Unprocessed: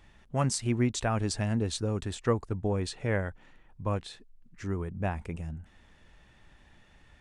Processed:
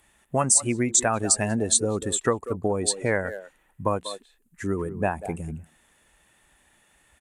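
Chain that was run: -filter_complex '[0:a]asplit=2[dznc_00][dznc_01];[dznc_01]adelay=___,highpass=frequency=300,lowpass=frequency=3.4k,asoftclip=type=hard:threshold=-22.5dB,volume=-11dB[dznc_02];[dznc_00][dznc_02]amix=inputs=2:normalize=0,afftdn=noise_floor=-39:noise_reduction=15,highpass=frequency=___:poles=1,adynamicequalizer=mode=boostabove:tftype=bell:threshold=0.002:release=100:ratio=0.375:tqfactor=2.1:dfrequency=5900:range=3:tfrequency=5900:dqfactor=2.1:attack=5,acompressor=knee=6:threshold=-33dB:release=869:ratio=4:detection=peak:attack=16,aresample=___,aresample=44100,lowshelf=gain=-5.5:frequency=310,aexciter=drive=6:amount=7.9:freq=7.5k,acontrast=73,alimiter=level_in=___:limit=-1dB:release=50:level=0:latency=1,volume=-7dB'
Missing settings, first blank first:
190, 200, 32000, 15dB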